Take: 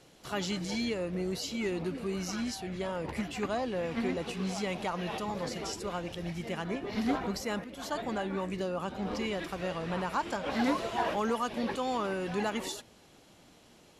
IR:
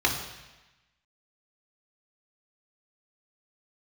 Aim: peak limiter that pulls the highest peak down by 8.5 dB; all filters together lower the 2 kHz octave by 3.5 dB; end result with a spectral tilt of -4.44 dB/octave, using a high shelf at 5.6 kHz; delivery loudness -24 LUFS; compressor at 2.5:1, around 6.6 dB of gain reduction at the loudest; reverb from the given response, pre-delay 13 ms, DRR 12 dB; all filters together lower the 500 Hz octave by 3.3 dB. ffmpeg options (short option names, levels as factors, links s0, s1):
-filter_complex "[0:a]equalizer=f=500:t=o:g=-4,equalizer=f=2000:t=o:g=-5,highshelf=f=5600:g=5.5,acompressor=threshold=0.0158:ratio=2.5,alimiter=level_in=2.82:limit=0.0631:level=0:latency=1,volume=0.355,asplit=2[s0][s1];[1:a]atrim=start_sample=2205,adelay=13[s2];[s1][s2]afir=irnorm=-1:irlink=0,volume=0.0531[s3];[s0][s3]amix=inputs=2:normalize=0,volume=7.5"